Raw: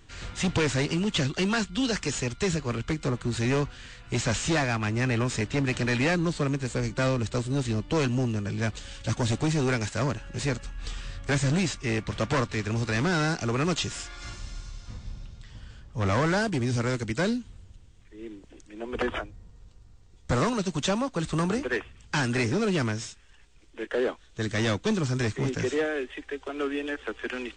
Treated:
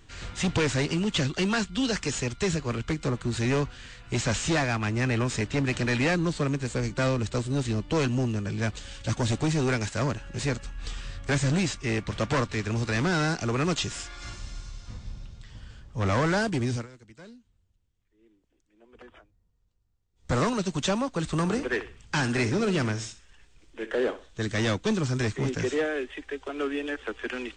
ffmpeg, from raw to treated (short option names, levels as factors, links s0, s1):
-filter_complex "[0:a]asettb=1/sr,asplit=3[s0][s1][s2];[s0]atrim=end=21.404[s3];[s1]atrim=start=21.4:end=24.4,asetpts=PTS-STARTPTS,afade=t=in:d=0.004:c=qsin,afade=t=out:st=2.996:d=0.004:c=qsin,aecho=1:1:63|126|189:0.2|0.0579|0.0168,atrim=end_sample=132300[s4];[s2]atrim=start=24.396[s5];[s3][s4]acrossfade=d=0.004:c1=hsin:c2=qsin[s6];[s6][s5]acrossfade=d=0.004:c1=qsin:c2=hsin,asplit=3[s7][s8][s9];[s7]atrim=end=16.87,asetpts=PTS-STARTPTS,afade=t=out:st=16.63:d=0.24:c=qsin:silence=0.0841395[s10];[s8]atrim=start=16.87:end=20.15,asetpts=PTS-STARTPTS,volume=0.0841[s11];[s9]atrim=start=20.15,asetpts=PTS-STARTPTS,afade=t=in:d=0.24:c=qsin:silence=0.0841395[s12];[s10][s11][s12]concat=n=3:v=0:a=1"